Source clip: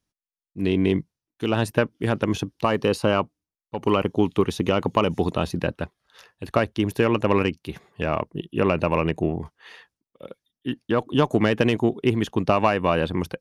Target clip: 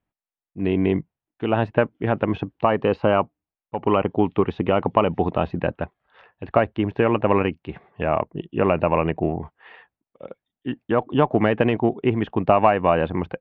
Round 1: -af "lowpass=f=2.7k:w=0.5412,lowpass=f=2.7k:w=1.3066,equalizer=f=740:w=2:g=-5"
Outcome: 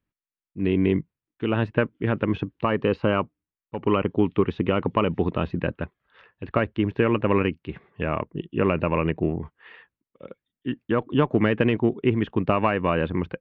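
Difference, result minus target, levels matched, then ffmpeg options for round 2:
1000 Hz band -3.5 dB
-af "lowpass=f=2.7k:w=0.5412,lowpass=f=2.7k:w=1.3066,equalizer=f=740:w=2:g=6.5"

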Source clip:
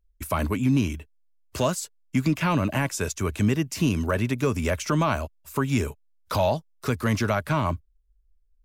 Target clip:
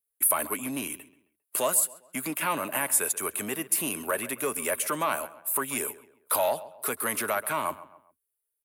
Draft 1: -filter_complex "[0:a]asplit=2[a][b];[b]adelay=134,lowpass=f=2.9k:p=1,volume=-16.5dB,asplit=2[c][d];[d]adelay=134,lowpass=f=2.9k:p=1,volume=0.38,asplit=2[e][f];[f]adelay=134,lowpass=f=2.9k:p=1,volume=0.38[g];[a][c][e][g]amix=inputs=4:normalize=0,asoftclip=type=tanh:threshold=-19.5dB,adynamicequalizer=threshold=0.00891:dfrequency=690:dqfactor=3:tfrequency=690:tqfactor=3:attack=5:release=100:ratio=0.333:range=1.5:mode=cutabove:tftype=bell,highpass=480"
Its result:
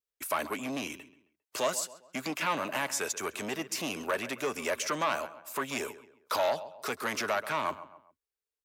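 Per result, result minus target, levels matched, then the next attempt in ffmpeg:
soft clip: distortion +11 dB; 8000 Hz band -5.0 dB
-filter_complex "[0:a]asplit=2[a][b];[b]adelay=134,lowpass=f=2.9k:p=1,volume=-16.5dB,asplit=2[c][d];[d]adelay=134,lowpass=f=2.9k:p=1,volume=0.38,asplit=2[e][f];[f]adelay=134,lowpass=f=2.9k:p=1,volume=0.38[g];[a][c][e][g]amix=inputs=4:normalize=0,asoftclip=type=tanh:threshold=-12dB,adynamicequalizer=threshold=0.00891:dfrequency=690:dqfactor=3:tfrequency=690:tqfactor=3:attack=5:release=100:ratio=0.333:range=1.5:mode=cutabove:tftype=bell,highpass=480"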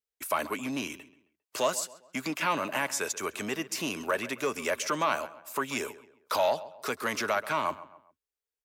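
8000 Hz band -6.0 dB
-filter_complex "[0:a]asplit=2[a][b];[b]adelay=134,lowpass=f=2.9k:p=1,volume=-16.5dB,asplit=2[c][d];[d]adelay=134,lowpass=f=2.9k:p=1,volume=0.38,asplit=2[e][f];[f]adelay=134,lowpass=f=2.9k:p=1,volume=0.38[g];[a][c][e][g]amix=inputs=4:normalize=0,asoftclip=type=tanh:threshold=-12dB,adynamicequalizer=threshold=0.00891:dfrequency=690:dqfactor=3:tfrequency=690:tqfactor=3:attack=5:release=100:ratio=0.333:range=1.5:mode=cutabove:tftype=bell,highpass=480,highshelf=f=7.8k:t=q:w=3:g=12"

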